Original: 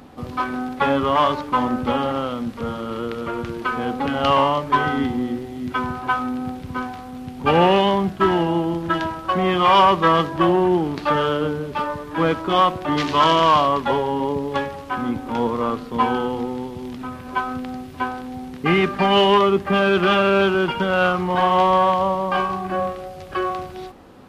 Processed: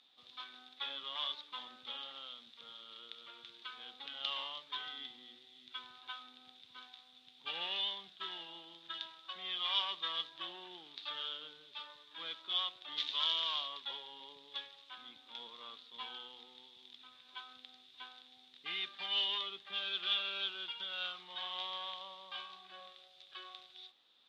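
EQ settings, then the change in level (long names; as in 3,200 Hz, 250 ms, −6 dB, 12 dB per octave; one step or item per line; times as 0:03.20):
resonant band-pass 3,600 Hz, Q 11
+1.5 dB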